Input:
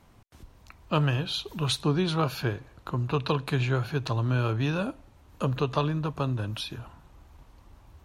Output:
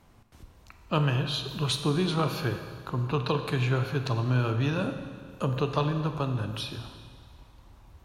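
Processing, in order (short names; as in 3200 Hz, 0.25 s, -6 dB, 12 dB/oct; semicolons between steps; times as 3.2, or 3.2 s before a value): Schroeder reverb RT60 1.9 s, combs from 32 ms, DRR 7 dB; gain -1 dB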